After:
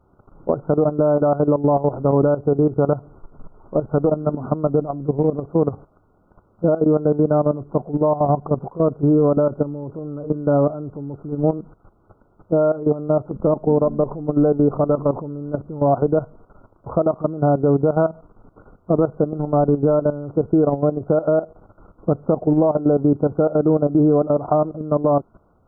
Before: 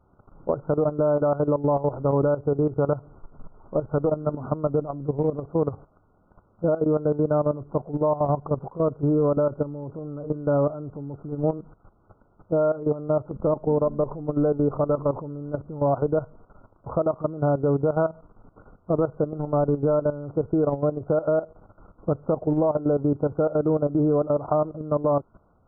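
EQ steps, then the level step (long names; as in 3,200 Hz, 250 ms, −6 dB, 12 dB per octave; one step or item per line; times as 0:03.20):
dynamic equaliser 720 Hz, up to +5 dB, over −42 dBFS, Q 6.9
parametric band 360 Hz +3 dB 0.77 octaves
dynamic equaliser 210 Hz, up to +6 dB, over −37 dBFS, Q 1.8
+2.5 dB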